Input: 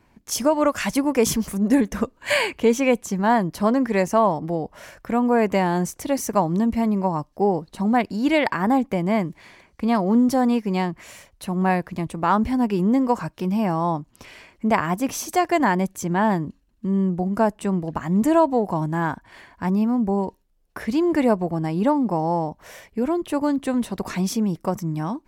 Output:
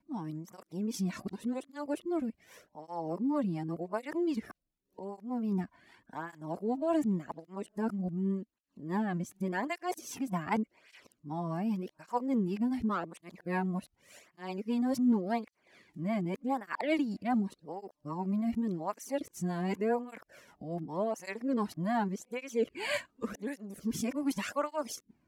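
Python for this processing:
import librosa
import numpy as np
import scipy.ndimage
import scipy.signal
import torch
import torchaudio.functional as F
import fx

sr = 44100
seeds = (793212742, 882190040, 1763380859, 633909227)

y = np.flip(x).copy()
y = fx.rotary_switch(y, sr, hz=5.0, then_hz=0.75, switch_at_s=20.77)
y = fx.flanger_cancel(y, sr, hz=0.87, depth_ms=2.5)
y = y * librosa.db_to_amplitude(-8.0)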